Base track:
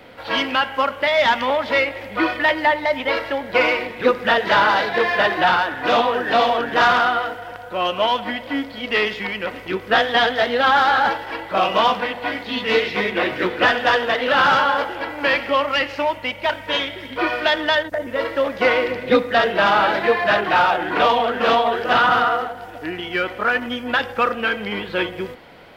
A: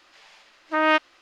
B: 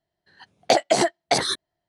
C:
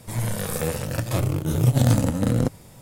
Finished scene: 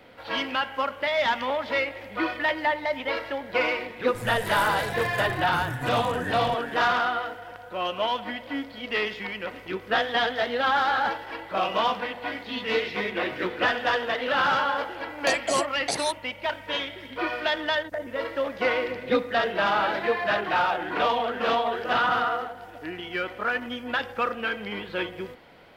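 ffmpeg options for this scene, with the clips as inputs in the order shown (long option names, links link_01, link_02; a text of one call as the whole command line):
ffmpeg -i bed.wav -i cue0.wav -i cue1.wav -i cue2.wav -filter_complex "[0:a]volume=-7.5dB[link_01];[3:a]acompressor=threshold=-22dB:ratio=6:attack=3.2:release=140:knee=1:detection=peak[link_02];[2:a]highshelf=frequency=6300:gain=11.5[link_03];[link_02]atrim=end=2.81,asetpts=PTS-STARTPTS,volume=-8dB,afade=type=in:duration=0.004:curve=hsin,afade=type=out:start_time=2.806:duration=0.004:curve=hsin,adelay=4070[link_04];[link_03]atrim=end=1.88,asetpts=PTS-STARTPTS,volume=-10dB,afade=type=in:duration=0.004:curve=hsin,afade=type=out:start_time=1.876:duration=0.004:curve=hsin,adelay=14570[link_05];[link_01][link_04][link_05]amix=inputs=3:normalize=0" out.wav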